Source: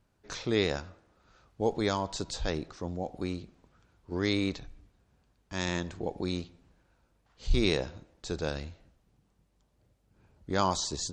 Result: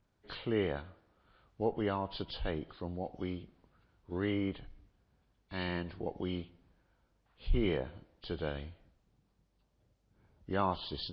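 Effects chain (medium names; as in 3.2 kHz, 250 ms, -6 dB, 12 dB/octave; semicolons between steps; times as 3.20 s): knee-point frequency compression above 1.9 kHz 1.5:1; low-pass that closes with the level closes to 2.1 kHz, closed at -25 dBFS; trim -4 dB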